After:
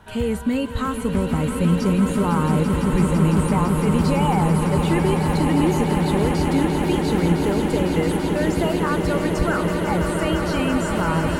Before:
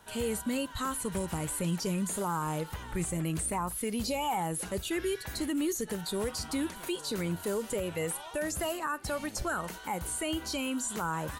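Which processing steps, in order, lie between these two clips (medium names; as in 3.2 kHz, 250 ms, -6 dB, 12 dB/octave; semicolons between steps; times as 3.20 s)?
tone controls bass +7 dB, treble -12 dB; on a send: echo with a slow build-up 168 ms, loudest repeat 8, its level -9.5 dB; on the sum: trim +7.5 dB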